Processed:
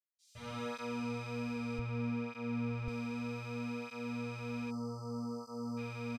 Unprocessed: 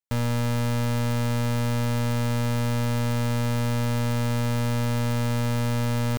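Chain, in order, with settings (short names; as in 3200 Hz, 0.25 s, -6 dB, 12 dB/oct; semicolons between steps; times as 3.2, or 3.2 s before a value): bands offset in time highs, lows 0.16 s, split 5600 Hz; reverb RT60 4.3 s, pre-delay 76 ms; 4.71–5.78 spectral delete 1400–4300 Hz; bell 3800 Hz +10 dB 1.8 oct; notches 60/120/180/240 Hz; limiter -26.5 dBFS, peak gain reduction 5 dB; 1.79–2.88 tone controls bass +6 dB, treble -9 dB; tape flanging out of phase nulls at 0.64 Hz, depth 7 ms; gain +5 dB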